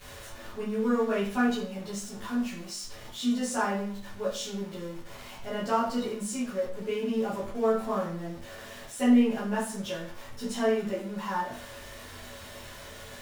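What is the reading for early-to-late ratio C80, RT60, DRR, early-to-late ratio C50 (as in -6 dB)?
8.5 dB, 0.50 s, -11.5 dB, 4.5 dB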